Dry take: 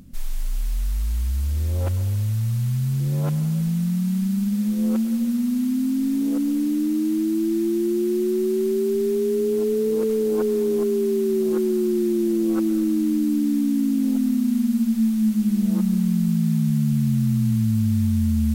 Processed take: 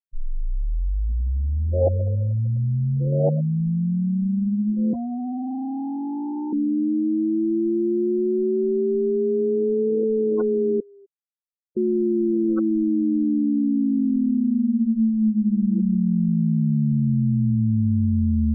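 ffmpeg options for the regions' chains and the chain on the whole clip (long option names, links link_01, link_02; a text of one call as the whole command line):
ffmpeg -i in.wav -filter_complex "[0:a]asettb=1/sr,asplit=3[link_01][link_02][link_03];[link_01]atrim=end=1.734[link_04];[link_02]atrim=start=1.73:end=3.41,asetpts=PTS-STARTPTS,afade=type=in:duration=0.004:curve=qsin,afade=type=out:start_time=1.676:duration=0.004:curve=qsin,lowpass=frequency=630:width_type=q:width=3.7,equalizer=frequency=500:width_type=o:width=0.31:gain=8.5[link_05];[link_03]atrim=start=3.406[link_06];[link_04][link_05]acrossfade=duration=0.004:curve1=hsin:curve2=qsin[link_07];[link_07][link_06]acrossfade=duration=0.004:curve1=qsin:curve2=hsin,asettb=1/sr,asplit=3[link_08][link_09][link_10];[link_08]atrim=end=4.934[link_11];[link_09]atrim=start=4.93:end=6.53,asetpts=PTS-STARTPTS,afade=type=in:duration=0.004:curve=qsin,afade=type=out:start_time=1.596:duration=0.004:curve=qsin,highpass=frequency=53:poles=1,afreqshift=14,asoftclip=type=hard:threshold=-26.5dB[link_12];[link_10]atrim=start=6.526[link_13];[link_11][link_12]acrossfade=duration=0.004:curve1=hsin:curve2=qsin[link_14];[link_14][link_13]acrossfade=duration=0.004:curve1=qsin:curve2=hsin,asettb=1/sr,asplit=3[link_15][link_16][link_17];[link_15]atrim=end=10.804[link_18];[link_16]atrim=start=10.8:end=11.77,asetpts=PTS-STARTPTS,afade=type=in:duration=0.004:curve=qsin,afade=type=out:start_time=0.966:duration=0.004:curve=qsin,highpass=1400,aecho=1:1:6.7:0.49,atrim=end_sample=42777[link_19];[link_17]atrim=start=11.766[link_20];[link_18][link_19]acrossfade=duration=0.004:curve1=hsin:curve2=qsin[link_21];[link_21][link_20]acrossfade=duration=0.004:curve1=qsin:curve2=hsin,afftfilt=real='re*gte(hypot(re,im),0.0708)':imag='im*gte(hypot(re,im),0.0708)':win_size=1024:overlap=0.75,highshelf=frequency=2800:gain=11.5" out.wav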